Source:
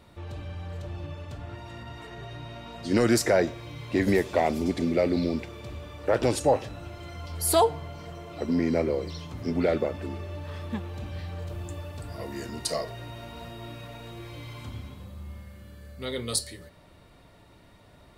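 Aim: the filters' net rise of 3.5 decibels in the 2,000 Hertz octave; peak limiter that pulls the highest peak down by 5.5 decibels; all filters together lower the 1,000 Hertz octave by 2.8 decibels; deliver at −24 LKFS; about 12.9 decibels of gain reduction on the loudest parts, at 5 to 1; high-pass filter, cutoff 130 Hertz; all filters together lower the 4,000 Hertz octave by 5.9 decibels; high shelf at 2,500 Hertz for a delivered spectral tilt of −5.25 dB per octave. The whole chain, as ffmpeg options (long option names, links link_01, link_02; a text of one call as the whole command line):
ffmpeg -i in.wav -af "highpass=130,equalizer=frequency=1000:width_type=o:gain=-5,equalizer=frequency=2000:width_type=o:gain=8.5,highshelf=frequency=2500:gain=-5,equalizer=frequency=4000:width_type=o:gain=-5,acompressor=threshold=-33dB:ratio=5,volume=16.5dB,alimiter=limit=-10.5dB:level=0:latency=1" out.wav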